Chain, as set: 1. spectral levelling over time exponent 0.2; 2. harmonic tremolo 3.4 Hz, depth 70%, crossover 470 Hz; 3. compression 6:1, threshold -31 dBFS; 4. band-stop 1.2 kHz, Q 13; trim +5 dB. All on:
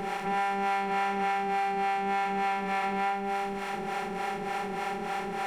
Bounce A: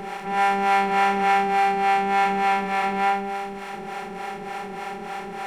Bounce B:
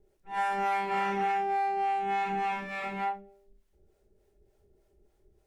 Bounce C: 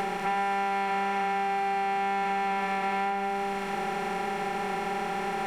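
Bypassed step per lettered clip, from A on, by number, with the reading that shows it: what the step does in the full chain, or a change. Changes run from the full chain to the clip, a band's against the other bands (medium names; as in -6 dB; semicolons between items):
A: 3, mean gain reduction 4.0 dB; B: 1, 1 kHz band +3.0 dB; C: 2, momentary loudness spread change -2 LU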